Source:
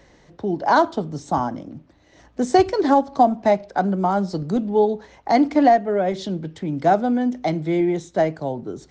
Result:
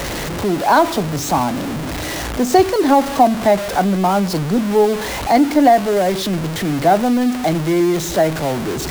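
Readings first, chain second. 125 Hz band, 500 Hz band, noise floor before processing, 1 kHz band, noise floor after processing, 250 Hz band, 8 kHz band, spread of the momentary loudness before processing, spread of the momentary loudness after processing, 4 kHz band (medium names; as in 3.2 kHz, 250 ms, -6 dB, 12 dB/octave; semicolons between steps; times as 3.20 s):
+6.5 dB, +4.0 dB, -55 dBFS, +4.0 dB, -24 dBFS, +4.5 dB, no reading, 12 LU, 9 LU, +11.0 dB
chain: jump at every zero crossing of -23 dBFS; in parallel at -5 dB: bit crusher 5-bit; on the sum: trim -1.5 dB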